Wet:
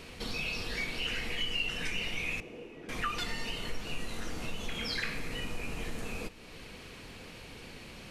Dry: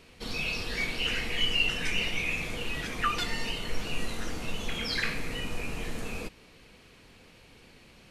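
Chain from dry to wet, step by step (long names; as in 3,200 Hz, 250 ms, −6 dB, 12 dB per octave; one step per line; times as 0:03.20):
downward compressor 2 to 1, threshold −49 dBFS, peak gain reduction 15 dB
0:02.40–0:02.89: resonant band-pass 380 Hz, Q 1.7
four-comb reverb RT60 3.1 s, DRR 18.5 dB
level +7.5 dB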